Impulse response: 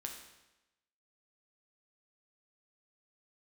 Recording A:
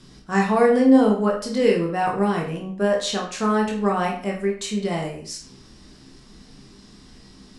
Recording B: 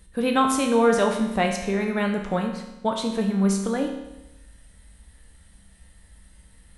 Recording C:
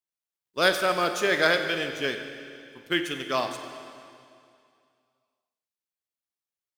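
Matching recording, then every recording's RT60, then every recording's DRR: B; 0.50 s, 1.0 s, 2.4 s; -1.0 dB, 2.0 dB, 6.5 dB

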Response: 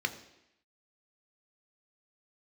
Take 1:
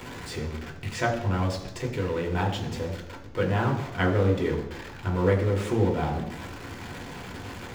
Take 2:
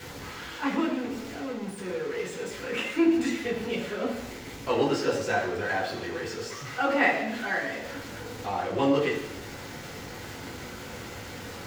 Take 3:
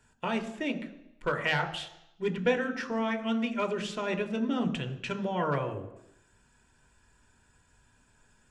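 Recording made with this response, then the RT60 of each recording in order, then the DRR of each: 3; 0.85 s, 0.85 s, 0.85 s; -0.5 dB, -6.0 dB, 7.0 dB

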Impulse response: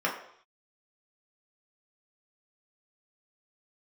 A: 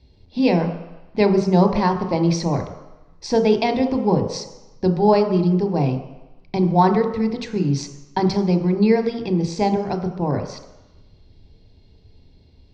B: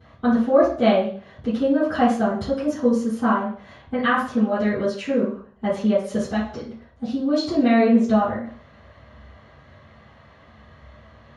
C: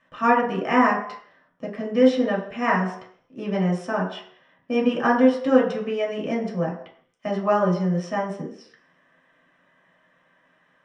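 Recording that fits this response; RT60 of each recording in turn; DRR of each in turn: C; 1.0 s, 0.45 s, 0.65 s; 6.0 dB, -16.0 dB, -3.0 dB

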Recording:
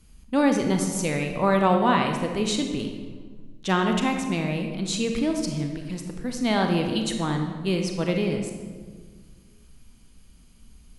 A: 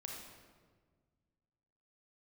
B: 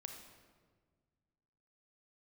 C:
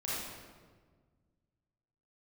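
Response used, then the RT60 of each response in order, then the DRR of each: B; 1.6 s, 1.6 s, 1.5 s; -1.0 dB, 3.5 dB, -8.5 dB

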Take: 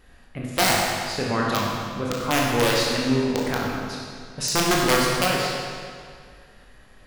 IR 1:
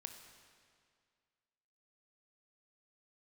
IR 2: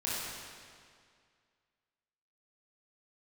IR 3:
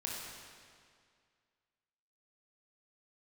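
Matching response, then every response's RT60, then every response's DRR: 3; 2.1 s, 2.1 s, 2.1 s; 5.5 dB, -8.5 dB, -3.5 dB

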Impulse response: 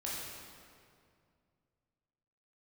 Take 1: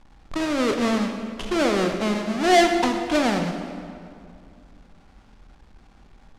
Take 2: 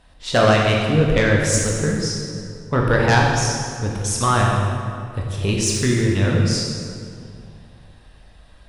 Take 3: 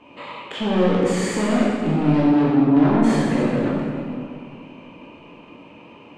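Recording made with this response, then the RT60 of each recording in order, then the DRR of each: 3; 2.3 s, 2.3 s, 2.3 s; 4.0 dB, -2.0 dB, -6.5 dB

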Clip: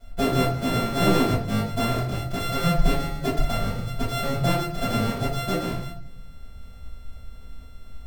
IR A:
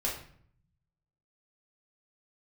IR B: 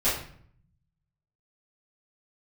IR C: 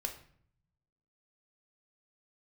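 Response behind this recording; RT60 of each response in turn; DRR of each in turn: B; 0.60 s, 0.60 s, 0.60 s; -4.0 dB, -13.0 dB, 4.0 dB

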